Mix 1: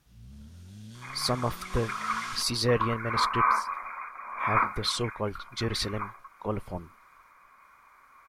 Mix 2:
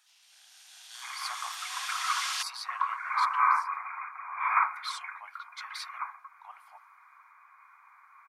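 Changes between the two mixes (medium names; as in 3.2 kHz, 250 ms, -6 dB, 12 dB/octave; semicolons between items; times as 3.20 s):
speech -9.5 dB; first sound +9.5 dB; master: add steep high-pass 740 Hz 72 dB/octave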